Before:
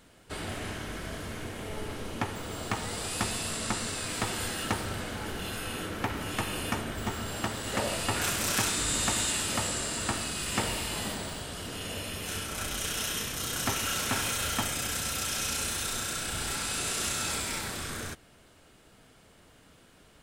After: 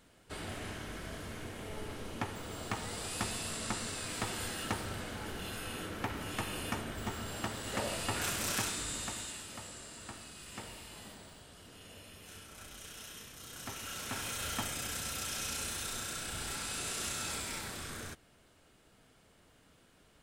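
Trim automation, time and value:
8.51 s -5.5 dB
9.49 s -16 dB
13.40 s -16 dB
14.51 s -6.5 dB

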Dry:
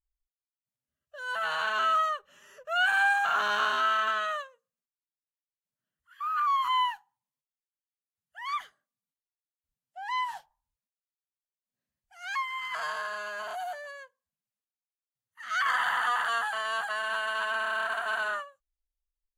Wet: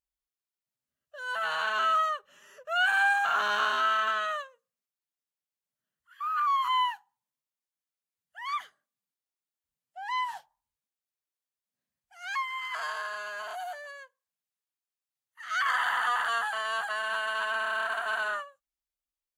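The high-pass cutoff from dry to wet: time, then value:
high-pass 6 dB/octave
12.33 s 140 Hz
12.80 s 530 Hz
15.48 s 530 Hz
16.22 s 170 Hz

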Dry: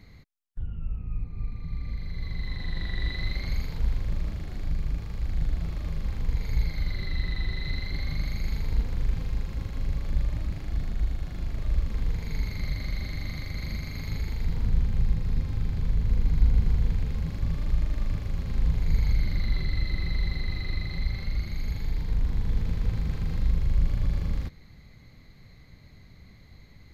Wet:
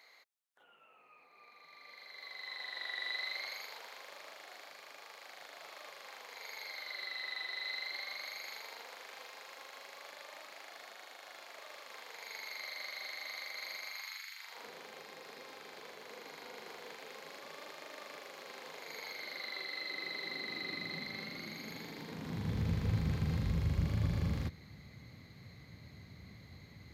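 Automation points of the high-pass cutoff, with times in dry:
high-pass 24 dB/octave
13.83 s 590 Hz
14.32 s 1.5 kHz
14.65 s 450 Hz
19.70 s 450 Hz
20.85 s 220 Hz
22.09 s 220 Hz
22.63 s 78 Hz

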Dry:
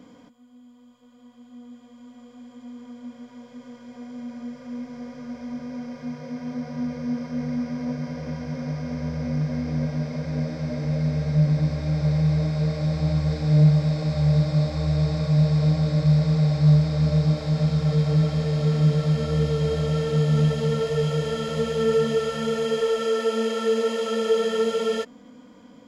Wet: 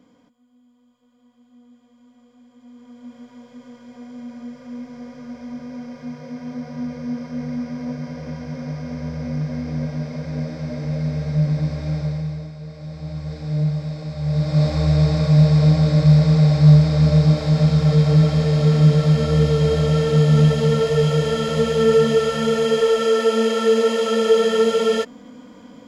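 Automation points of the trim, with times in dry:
2.52 s -7 dB
3.17 s +0.5 dB
11.94 s +0.5 dB
12.59 s -12 dB
13.40 s -5 dB
14.18 s -5 dB
14.66 s +6 dB

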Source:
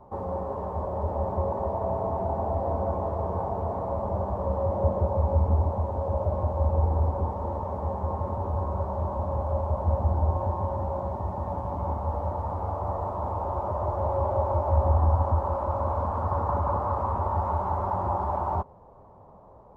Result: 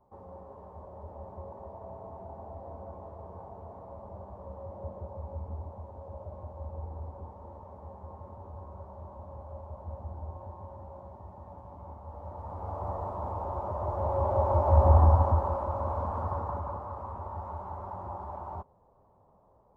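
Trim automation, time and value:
12.05 s -16 dB
12.82 s -5 dB
13.76 s -5 dB
14.97 s +3 dB
15.70 s -4.5 dB
16.22 s -4.5 dB
16.86 s -12 dB

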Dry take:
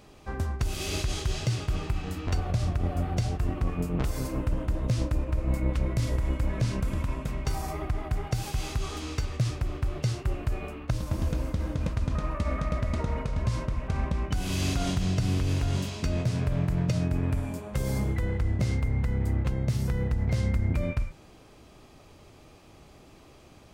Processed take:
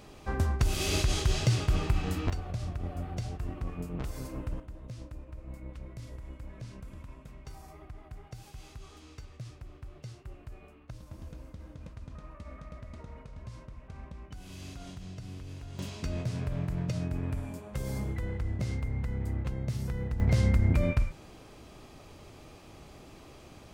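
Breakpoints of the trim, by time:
+2 dB
from 2.30 s -8 dB
from 4.60 s -16.5 dB
from 15.79 s -6 dB
from 20.20 s +2 dB

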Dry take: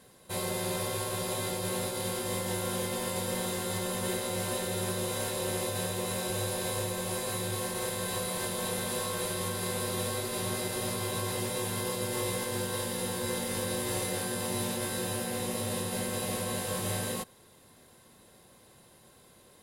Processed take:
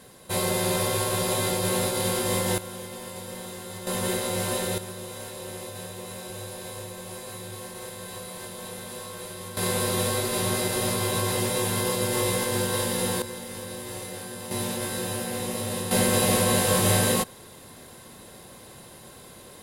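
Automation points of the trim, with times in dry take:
+7.5 dB
from 2.58 s -5 dB
from 3.87 s +5 dB
from 4.78 s -5 dB
from 9.57 s +7 dB
from 13.22 s -4 dB
from 14.51 s +3 dB
from 15.91 s +11.5 dB

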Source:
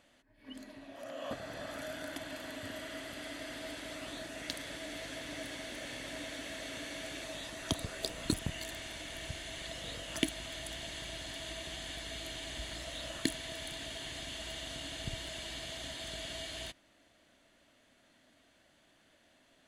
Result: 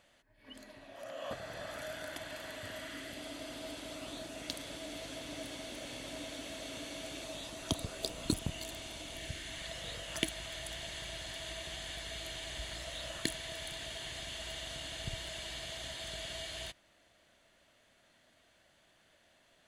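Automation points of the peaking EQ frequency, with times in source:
peaking EQ -8.5 dB 0.53 oct
2.74 s 270 Hz
3.23 s 1.8 kHz
9.12 s 1.8 kHz
9.71 s 270 Hz

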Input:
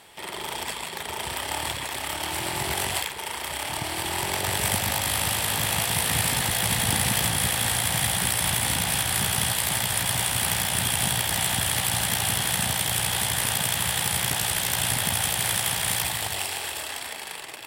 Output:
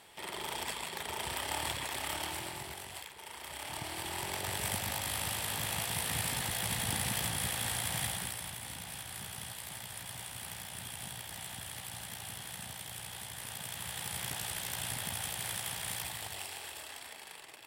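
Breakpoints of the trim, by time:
2.17 s -6.5 dB
2.84 s -19 dB
3.76 s -10.5 dB
8.04 s -10.5 dB
8.53 s -19 dB
13.34 s -19 dB
14.25 s -13 dB

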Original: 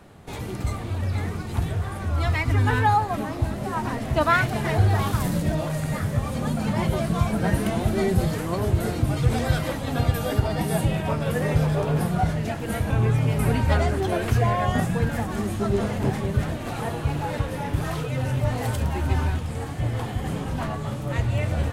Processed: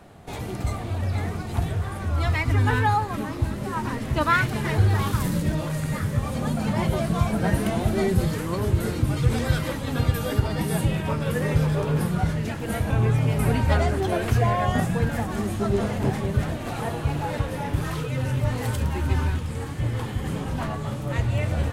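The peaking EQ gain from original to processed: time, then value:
peaking EQ 700 Hz 0.28 oct
+5.5 dB
from 1.69 s -1 dB
from 2.77 s -11 dB
from 6.23 s +0.5 dB
from 8.07 s -10 dB
from 12.61 s +0.5 dB
from 17.80 s -10 dB
from 20.35 s -1.5 dB

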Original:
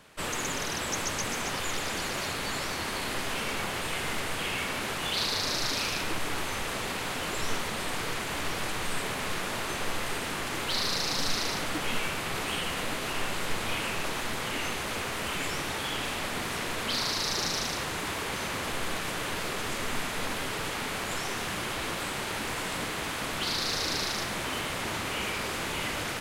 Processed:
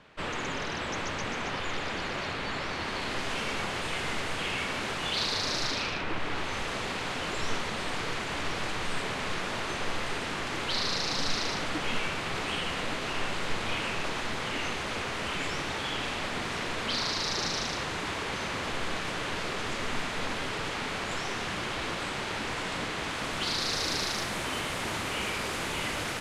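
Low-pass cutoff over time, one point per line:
2.63 s 3.7 kHz
3.34 s 6.8 kHz
5.62 s 6.8 kHz
6.05 s 2.7 kHz
6.61 s 6.2 kHz
22.95 s 6.2 kHz
23.90 s 11 kHz

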